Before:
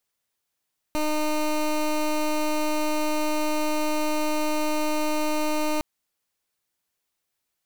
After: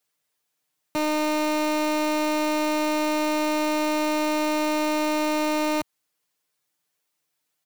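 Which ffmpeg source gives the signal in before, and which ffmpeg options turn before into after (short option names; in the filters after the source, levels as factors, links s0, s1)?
-f lavfi -i "aevalsrc='0.0631*(2*lt(mod(305*t,1),0.18)-1)':d=4.86:s=44100"
-af "highpass=110,aecho=1:1:6.6:0.85,volume=8.91,asoftclip=hard,volume=0.112"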